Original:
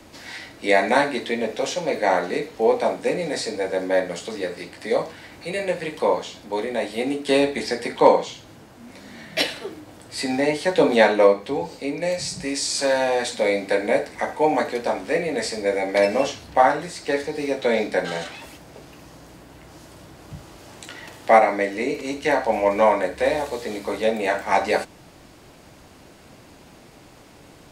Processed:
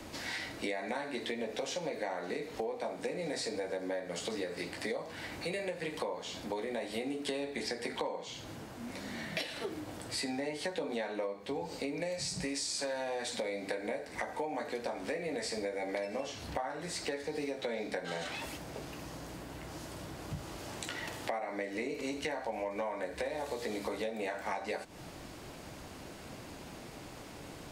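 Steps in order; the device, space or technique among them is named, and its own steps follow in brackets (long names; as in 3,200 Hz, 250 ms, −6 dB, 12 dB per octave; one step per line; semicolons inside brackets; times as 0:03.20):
serial compression, peaks first (downward compressor 5 to 1, threshold −28 dBFS, peak gain reduction 18 dB; downward compressor 2.5 to 1, threshold −36 dBFS, peak gain reduction 8.5 dB)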